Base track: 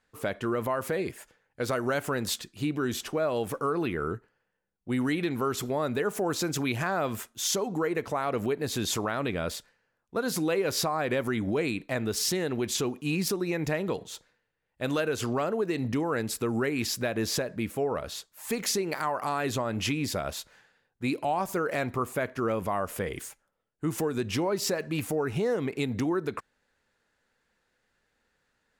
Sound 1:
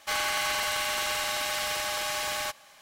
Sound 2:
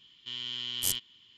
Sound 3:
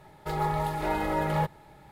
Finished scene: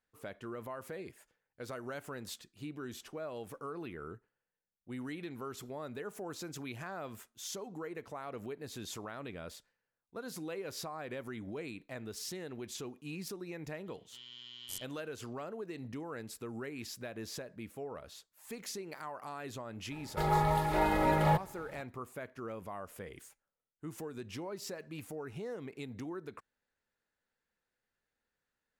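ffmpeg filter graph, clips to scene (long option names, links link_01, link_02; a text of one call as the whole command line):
ffmpeg -i bed.wav -i cue0.wav -i cue1.wav -i cue2.wav -filter_complex "[0:a]volume=-14dB[link_01];[2:a]atrim=end=1.37,asetpts=PTS-STARTPTS,volume=-14dB,afade=type=in:duration=0.004:curve=hsin,afade=type=out:start_time=1.366:duration=0.004:curve=hsin,adelay=13860[link_02];[3:a]atrim=end=1.91,asetpts=PTS-STARTPTS,volume=-0.5dB,afade=type=in:duration=0.004:curve=hsin,afade=type=out:start_time=1.906:duration=0.004:curve=hsin,adelay=19910[link_03];[link_01][link_02][link_03]amix=inputs=3:normalize=0" out.wav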